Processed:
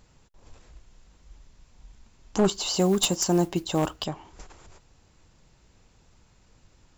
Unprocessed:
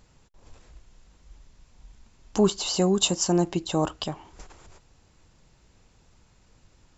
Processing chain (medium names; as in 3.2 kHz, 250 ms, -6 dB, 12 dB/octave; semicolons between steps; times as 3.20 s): one-sided wavefolder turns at -17 dBFS; 2.51–4.05 s: modulation noise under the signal 27 dB